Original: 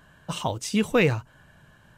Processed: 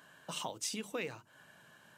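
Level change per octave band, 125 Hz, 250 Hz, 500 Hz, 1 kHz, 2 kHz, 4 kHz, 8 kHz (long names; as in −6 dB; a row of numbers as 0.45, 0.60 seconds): −24.5, −19.5, −17.5, −13.0, −15.5, −8.0, −4.5 decibels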